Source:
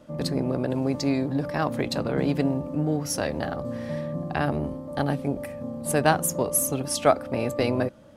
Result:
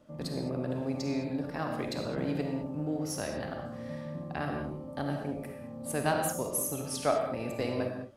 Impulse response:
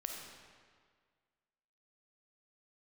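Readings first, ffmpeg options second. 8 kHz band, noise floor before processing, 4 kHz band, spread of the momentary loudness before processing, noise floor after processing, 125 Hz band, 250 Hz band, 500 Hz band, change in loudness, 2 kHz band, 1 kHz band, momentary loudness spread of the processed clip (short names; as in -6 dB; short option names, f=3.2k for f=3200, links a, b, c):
-8.0 dB, -38 dBFS, -7.5 dB, 9 LU, -43 dBFS, -8.0 dB, -7.5 dB, -7.5 dB, -7.5 dB, -7.5 dB, -7.5 dB, 9 LU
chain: -filter_complex "[1:a]atrim=start_sample=2205,afade=t=out:st=0.27:d=0.01,atrim=end_sample=12348[a];[0:a][a]afir=irnorm=-1:irlink=0,volume=-6.5dB"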